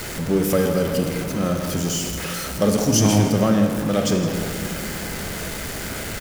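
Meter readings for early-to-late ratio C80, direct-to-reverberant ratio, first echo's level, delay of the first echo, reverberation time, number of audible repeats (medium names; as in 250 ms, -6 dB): 5.5 dB, 3.5 dB, -13.0 dB, 163 ms, 2.5 s, 1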